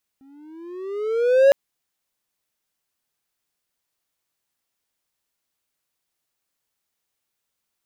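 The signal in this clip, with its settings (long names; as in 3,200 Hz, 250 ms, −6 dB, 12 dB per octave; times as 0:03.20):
pitch glide with a swell triangle, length 1.31 s, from 266 Hz, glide +13 semitones, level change +39 dB, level −6.5 dB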